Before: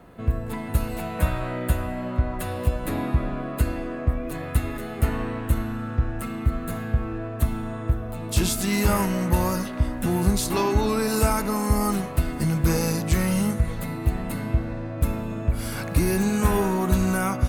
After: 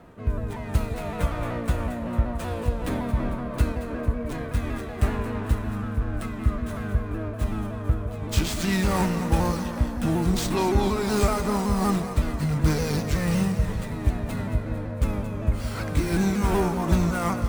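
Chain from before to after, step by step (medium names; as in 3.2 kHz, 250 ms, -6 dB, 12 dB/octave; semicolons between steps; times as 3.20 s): sawtooth pitch modulation -2 st, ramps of 188 ms; two-band feedback delay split 530 Hz, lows 162 ms, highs 225 ms, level -11.5 dB; sliding maximum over 3 samples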